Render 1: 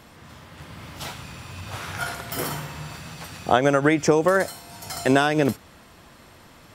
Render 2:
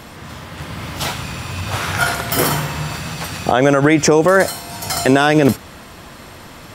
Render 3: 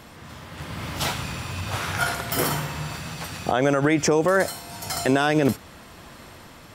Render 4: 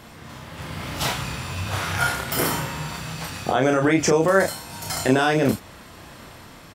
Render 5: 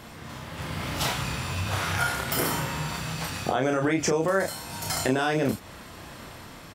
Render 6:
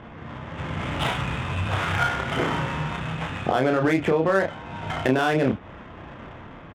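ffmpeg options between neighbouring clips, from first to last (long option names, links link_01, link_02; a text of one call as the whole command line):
ffmpeg -i in.wav -af "alimiter=level_in=13dB:limit=-1dB:release=50:level=0:latency=1,volume=-1dB" out.wav
ffmpeg -i in.wav -af "dynaudnorm=framelen=120:gausssize=11:maxgain=6.5dB,volume=-8.5dB" out.wav
ffmpeg -i in.wav -filter_complex "[0:a]asplit=2[link_01][link_02];[link_02]adelay=31,volume=-4dB[link_03];[link_01][link_03]amix=inputs=2:normalize=0" out.wav
ffmpeg -i in.wav -af "acompressor=threshold=-25dB:ratio=2" out.wav
ffmpeg -i in.wav -af "aresample=8000,aresample=44100,adynamicsmooth=sensitivity=7:basefreq=1800,volume=3.5dB" out.wav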